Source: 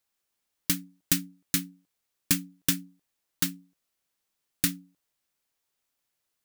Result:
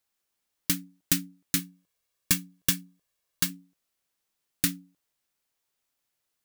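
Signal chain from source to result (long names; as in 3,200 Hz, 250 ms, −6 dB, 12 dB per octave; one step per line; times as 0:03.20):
0:01.59–0:03.50: comb filter 1.8 ms, depth 48%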